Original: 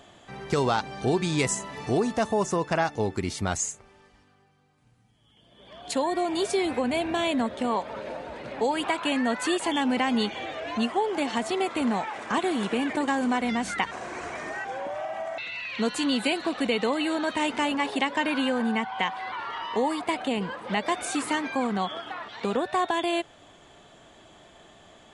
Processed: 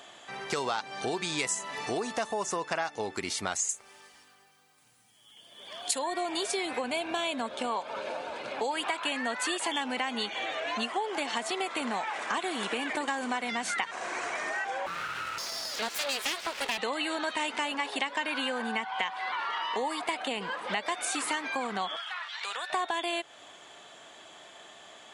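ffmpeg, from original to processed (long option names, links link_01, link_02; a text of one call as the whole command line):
ffmpeg -i in.wav -filter_complex "[0:a]asettb=1/sr,asplit=3[link_01][link_02][link_03];[link_01]atrim=end=3.694[link_04];[link_02]atrim=start=3.69:end=5.99,asetpts=PTS-STARTPTS,afade=type=in:duration=0.004:curve=qsin,afade=type=out:start_time=2.296:duration=0.004:curve=qsin,aemphasis=mode=production:type=50fm[link_05];[link_03]atrim=start=5.986[link_06];[link_04][link_05]acrossfade=duration=0.004:curve1=hsin:curve2=qsin[link_07];[link_07][link_06]acrossfade=duration=0.004:curve1=qsin:curve2=hsin,asettb=1/sr,asplit=3[link_08][link_09][link_10];[link_08]atrim=end=6.854[link_11];[link_09]atrim=start=6.85:end=8.71,asetpts=PTS-STARTPTS,afade=type=in:duration=0.004:curve=qsin,afade=type=out:start_time=1.856:duration=0.004:curve=qsin,bandreject=frequency=1900:width=6.1[link_12];[link_10]atrim=start=8.706[link_13];[link_11][link_12]acrossfade=duration=0.004:curve1=hsin:curve2=qsin[link_14];[link_14][link_13]acrossfade=duration=0.004:curve1=qsin:curve2=hsin,asettb=1/sr,asplit=3[link_15][link_16][link_17];[link_15]atrim=end=9.934[link_18];[link_16]atrim=start=9.93:end=10.7,asetpts=PTS-STARTPTS,afade=type=in:duration=0.004:curve=qsin,afade=type=out:start_time=0.766:duration=0.004:curve=qsin,bandreject=frequency=5000:width=10[link_19];[link_17]atrim=start=10.696[link_20];[link_18][link_19]acrossfade=duration=0.004:curve1=hsin:curve2=qsin[link_21];[link_21][link_20]acrossfade=duration=0.004:curve1=qsin:curve2=hsin,asettb=1/sr,asplit=3[link_22][link_23][link_24];[link_22]atrim=end=14.864[link_25];[link_23]atrim=start=14.86:end=16.78,asetpts=PTS-STARTPTS,afade=type=in:duration=0.004:curve=qsin,afade=type=out:start_time=1.916:duration=0.004:curve=qsin,aeval=exprs='abs(val(0))':channel_layout=same[link_26];[link_24]atrim=start=16.776[link_27];[link_25][link_26]acrossfade=duration=0.004:curve1=hsin:curve2=qsin[link_28];[link_28][link_27]acrossfade=duration=0.004:curve1=qsin:curve2=hsin,asettb=1/sr,asplit=3[link_29][link_30][link_31];[link_29]atrim=end=21.964[link_32];[link_30]atrim=start=21.96:end=22.7,asetpts=PTS-STARTPTS,afade=type=in:duration=0.004:curve=qsin,afade=type=out:start_time=0.736:duration=0.004:curve=qsin,highpass=1400[link_33];[link_31]atrim=start=22.696[link_34];[link_32][link_33]acrossfade=duration=0.004:curve1=hsin:curve2=qsin[link_35];[link_35][link_34]acrossfade=duration=0.004:curve1=qsin:curve2=hsin,highpass=frequency=950:poles=1,acompressor=threshold=-35dB:ratio=3,volume=5.5dB" out.wav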